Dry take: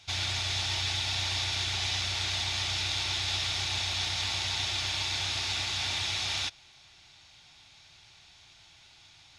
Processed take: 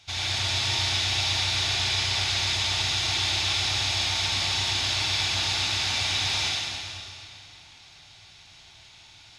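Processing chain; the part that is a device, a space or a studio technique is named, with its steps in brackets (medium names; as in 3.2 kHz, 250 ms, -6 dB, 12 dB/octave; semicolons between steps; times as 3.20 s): stairwell (reverberation RT60 2.6 s, pre-delay 43 ms, DRR -4 dB)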